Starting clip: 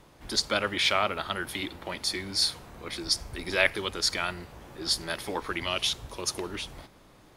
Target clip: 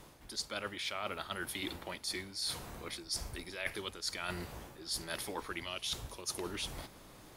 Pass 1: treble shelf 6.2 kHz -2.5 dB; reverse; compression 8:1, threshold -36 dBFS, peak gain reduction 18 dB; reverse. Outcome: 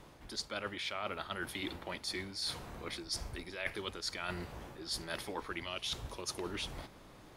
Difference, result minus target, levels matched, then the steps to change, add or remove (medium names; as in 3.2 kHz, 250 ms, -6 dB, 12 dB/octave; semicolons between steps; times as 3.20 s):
8 kHz band -3.0 dB
change: treble shelf 6.2 kHz +8.5 dB